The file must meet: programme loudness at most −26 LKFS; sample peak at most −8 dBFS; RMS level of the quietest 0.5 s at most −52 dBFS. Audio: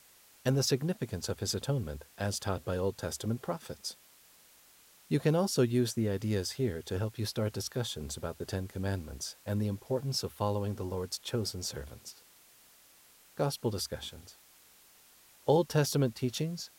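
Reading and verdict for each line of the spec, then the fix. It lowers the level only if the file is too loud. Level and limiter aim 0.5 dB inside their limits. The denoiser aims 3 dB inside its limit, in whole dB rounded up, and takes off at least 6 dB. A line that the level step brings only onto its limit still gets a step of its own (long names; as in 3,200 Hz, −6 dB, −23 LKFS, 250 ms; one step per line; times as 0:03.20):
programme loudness −33.5 LKFS: in spec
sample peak −13.0 dBFS: in spec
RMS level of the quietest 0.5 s −60 dBFS: in spec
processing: no processing needed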